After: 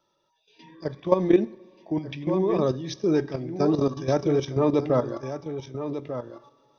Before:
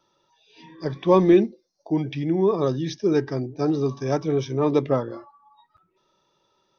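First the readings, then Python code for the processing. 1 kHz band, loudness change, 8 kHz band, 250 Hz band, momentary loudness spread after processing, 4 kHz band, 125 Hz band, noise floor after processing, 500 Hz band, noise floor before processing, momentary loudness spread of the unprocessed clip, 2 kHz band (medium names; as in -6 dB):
-2.5 dB, -3.0 dB, no reading, -2.0 dB, 12 LU, -1.5 dB, -2.5 dB, -73 dBFS, -2.0 dB, -70 dBFS, 12 LU, -2.5 dB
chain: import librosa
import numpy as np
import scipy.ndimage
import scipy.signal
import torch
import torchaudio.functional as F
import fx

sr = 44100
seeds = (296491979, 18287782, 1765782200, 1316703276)

y = fx.peak_eq(x, sr, hz=600.0, db=4.0, octaves=0.29)
y = y + 10.0 ** (-10.0 / 20.0) * np.pad(y, (int(1195 * sr / 1000.0), 0))[:len(y)]
y = fx.level_steps(y, sr, step_db=12)
y = fx.rev_double_slope(y, sr, seeds[0], early_s=0.63, late_s=3.4, knee_db=-17, drr_db=17.0)
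y = fx.rider(y, sr, range_db=4, speed_s=2.0)
y = y * librosa.db_to_amplitude(2.0)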